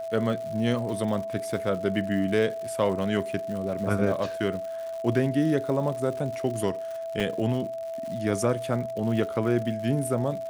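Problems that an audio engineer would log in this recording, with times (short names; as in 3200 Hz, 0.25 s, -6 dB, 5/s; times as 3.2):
crackle 160/s -35 dBFS
tone 660 Hz -31 dBFS
7.2 gap 3.3 ms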